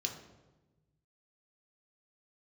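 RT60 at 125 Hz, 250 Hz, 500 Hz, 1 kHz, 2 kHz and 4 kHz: 2.1, 1.5, 1.3, 1.0, 0.85, 0.75 s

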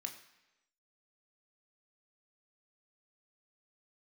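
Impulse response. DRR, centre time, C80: 3.5 dB, 17 ms, 12.0 dB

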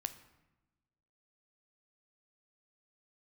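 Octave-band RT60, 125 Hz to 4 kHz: 1.5, 1.4, 1.1, 1.0, 0.90, 0.70 s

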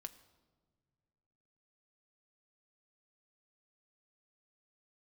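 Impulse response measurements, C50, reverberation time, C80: 15.5 dB, not exponential, 17.0 dB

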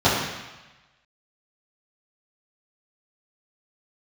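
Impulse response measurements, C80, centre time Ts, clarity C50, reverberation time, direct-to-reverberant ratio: 3.5 dB, 68 ms, 1.0 dB, 1.1 s, -12.0 dB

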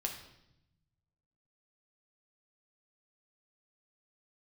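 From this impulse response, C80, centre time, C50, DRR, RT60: 9.5 dB, 24 ms, 7.0 dB, 1.5 dB, 0.80 s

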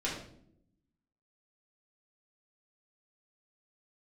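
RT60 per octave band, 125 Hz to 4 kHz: 1.2, 1.2, 0.85, 0.55, 0.50, 0.45 s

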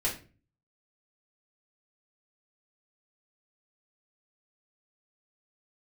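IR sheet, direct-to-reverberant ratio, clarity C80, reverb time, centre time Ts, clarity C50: -6.5 dB, 14.5 dB, 0.35 s, 23 ms, 9.0 dB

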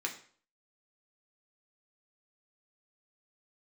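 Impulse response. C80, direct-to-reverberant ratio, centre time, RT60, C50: 14.5 dB, 1.0 dB, 15 ms, 0.50 s, 10.5 dB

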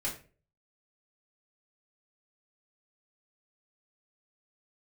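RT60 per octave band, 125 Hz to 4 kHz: 0.60, 0.45, 0.45, 0.30, 0.35, 0.25 s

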